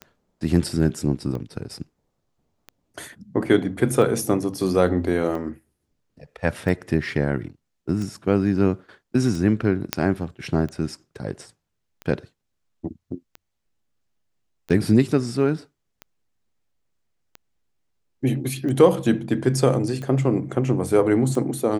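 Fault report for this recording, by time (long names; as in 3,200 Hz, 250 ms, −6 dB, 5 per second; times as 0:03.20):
scratch tick 45 rpm −21 dBFS
0:09.93: click −3 dBFS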